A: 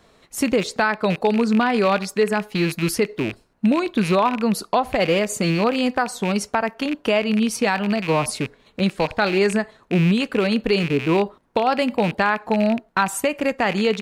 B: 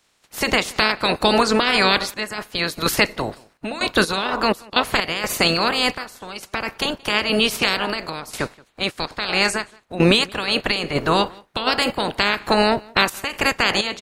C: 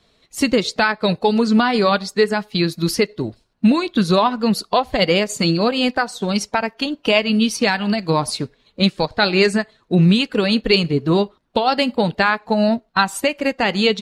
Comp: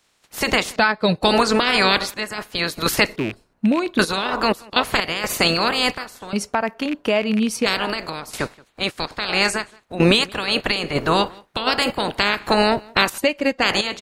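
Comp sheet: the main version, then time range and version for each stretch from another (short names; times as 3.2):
B
0.76–1.23 from C
3.16–3.99 from A
6.33–7.66 from A
13.18–13.62 from C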